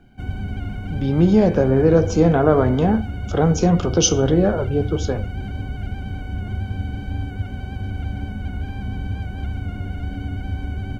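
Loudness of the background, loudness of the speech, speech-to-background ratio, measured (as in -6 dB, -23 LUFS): -29.0 LUFS, -18.0 LUFS, 11.0 dB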